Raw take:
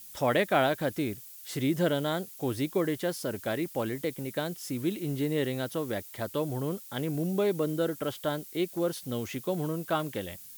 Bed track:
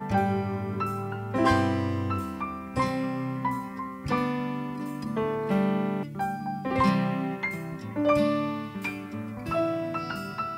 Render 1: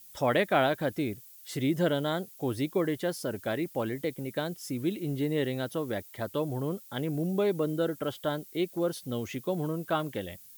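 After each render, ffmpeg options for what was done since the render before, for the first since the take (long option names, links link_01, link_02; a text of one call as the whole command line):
ffmpeg -i in.wav -af "afftdn=noise_reduction=6:noise_floor=-48" out.wav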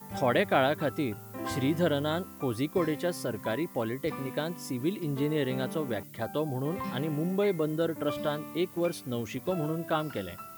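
ffmpeg -i in.wav -i bed.wav -filter_complex "[1:a]volume=-13.5dB[link_01];[0:a][link_01]amix=inputs=2:normalize=0" out.wav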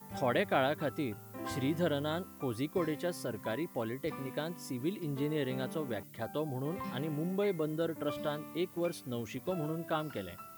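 ffmpeg -i in.wav -af "volume=-5dB" out.wav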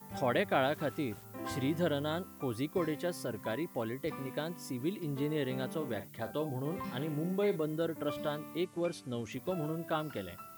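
ffmpeg -i in.wav -filter_complex "[0:a]asettb=1/sr,asplit=3[link_01][link_02][link_03];[link_01]atrim=end=0.624[link_04];[link_02]atrim=start=0.62:end=1.24,asetpts=PTS-STARTPTS,afade=type=in:duration=0.004:curve=qsin,afade=type=out:start_time=0.616:duration=0.004:curve=qsin,aeval=exprs='val(0)*gte(abs(val(0)),0.00376)':channel_layout=same[link_05];[link_03]atrim=start=1.236[link_06];[link_04][link_05]acrossfade=duration=0.004:curve1=hsin:curve2=qsin[link_07];[link_07][link_06]acrossfade=duration=0.004:curve1=qsin:curve2=hsin,asettb=1/sr,asplit=3[link_08][link_09][link_10];[link_08]atrim=end=5.764[link_11];[link_09]atrim=start=5.76:end=7.64,asetpts=PTS-STARTPTS,afade=type=in:duration=0.004:curve=qsin,afade=type=out:start_time=1.876:duration=0.004:curve=qsin,asplit=2[link_12][link_13];[link_13]adelay=49,volume=-11.5dB[link_14];[link_12][link_14]amix=inputs=2:normalize=0,atrim=end_sample=82908[link_15];[link_10]atrim=start=7.636[link_16];[link_11][link_15]acrossfade=duration=0.004:curve1=hsin:curve2=qsin[link_17];[link_17][link_16]acrossfade=duration=0.004:curve1=qsin:curve2=hsin,asettb=1/sr,asplit=3[link_18][link_19][link_20];[link_18]atrim=end=8.644[link_21];[link_19]atrim=start=8.64:end=9.32,asetpts=PTS-STARTPTS,afade=type=in:duration=0.004:curve=qsin,afade=type=out:start_time=0.676:duration=0.004:curve=qsin,lowpass=frequency=10000:width=0.5412,lowpass=frequency=10000:width=1.3066[link_22];[link_20]atrim=start=9.316[link_23];[link_21][link_22]acrossfade=duration=0.004:curve1=hsin:curve2=qsin[link_24];[link_24][link_23]acrossfade=duration=0.004:curve1=qsin:curve2=hsin" out.wav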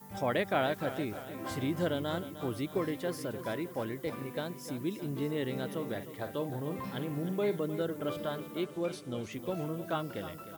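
ffmpeg -i in.wav -af "aecho=1:1:307|614|921|1228|1535|1842|2149:0.237|0.14|0.0825|0.0487|0.0287|0.017|0.01" out.wav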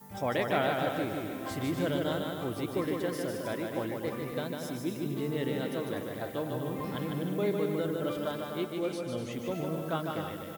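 ffmpeg -i in.wav -af "aecho=1:1:150|247.5|310.9|352.1|378.8:0.631|0.398|0.251|0.158|0.1" out.wav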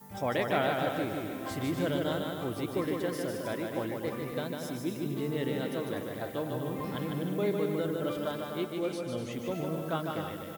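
ffmpeg -i in.wav -af anull out.wav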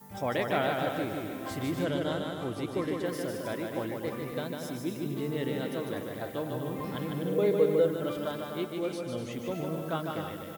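ffmpeg -i in.wav -filter_complex "[0:a]asettb=1/sr,asplit=3[link_01][link_02][link_03];[link_01]atrim=end=1.844[link_04];[link_02]atrim=start=1.84:end=3.06,asetpts=PTS-STARTPTS,afade=type=in:duration=0.004:curve=qsin,afade=type=out:start_time=1.216:duration=0.004:curve=qsin,lowpass=10000[link_05];[link_03]atrim=start=3.056[link_06];[link_04][link_05]acrossfade=duration=0.004:curve1=hsin:curve2=qsin[link_07];[link_07][link_06]acrossfade=duration=0.004:curve1=qsin:curve2=hsin,asettb=1/sr,asplit=3[link_08][link_09][link_10];[link_08]atrim=end=7.254[link_11];[link_09]atrim=start=7.25:end=7.88,asetpts=PTS-STARTPTS,afade=type=in:duration=0.004:curve=qsin,afade=type=out:start_time=0.626:duration=0.004:curve=qsin,equalizer=frequency=480:width_type=o:width=0.29:gain=14[link_12];[link_10]atrim=start=7.876[link_13];[link_11][link_12]acrossfade=duration=0.004:curve1=hsin:curve2=qsin[link_14];[link_14][link_13]acrossfade=duration=0.004:curve1=qsin:curve2=hsin" out.wav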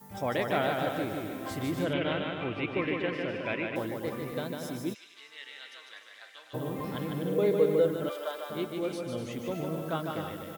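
ffmpeg -i in.wav -filter_complex "[0:a]asettb=1/sr,asplit=3[link_01][link_02][link_03];[link_01]atrim=end=1.934[link_04];[link_02]atrim=start=1.93:end=3.76,asetpts=PTS-STARTPTS,afade=type=in:duration=0.004:curve=qsin,afade=type=out:start_time=1.826:duration=0.004:curve=qsin,lowpass=frequency=2500:width_type=q:width=8.2[link_05];[link_03]atrim=start=3.756[link_06];[link_04][link_05]acrossfade=duration=0.004:curve1=hsin:curve2=qsin[link_07];[link_07][link_06]acrossfade=duration=0.004:curve1=qsin:curve2=hsin,asplit=3[link_08][link_09][link_10];[link_08]afade=type=out:start_time=4.93:duration=0.02[link_11];[link_09]asuperpass=centerf=3400:order=4:qfactor=0.72,afade=type=in:start_time=4.93:duration=0.02,afade=type=out:start_time=6.53:duration=0.02[link_12];[link_10]afade=type=in:start_time=6.53:duration=0.02[link_13];[link_11][link_12][link_13]amix=inputs=3:normalize=0,asettb=1/sr,asplit=3[link_14][link_15][link_16];[link_14]atrim=end=8.094[link_17];[link_15]atrim=start=8.09:end=8.5,asetpts=PTS-STARTPTS,afade=type=in:duration=0.004:curve=qsin,afade=type=out:start_time=0.406:duration=0.004:curve=qsin,highpass=frequency=450:width=0.5412,highpass=frequency=450:width=1.3066[link_18];[link_16]atrim=start=8.496[link_19];[link_17][link_18]acrossfade=duration=0.004:curve1=hsin:curve2=qsin[link_20];[link_20][link_19]acrossfade=duration=0.004:curve1=qsin:curve2=hsin" out.wav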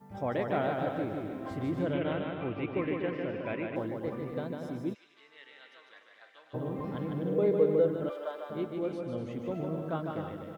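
ffmpeg -i in.wav -af "lowpass=frequency=1000:poles=1" out.wav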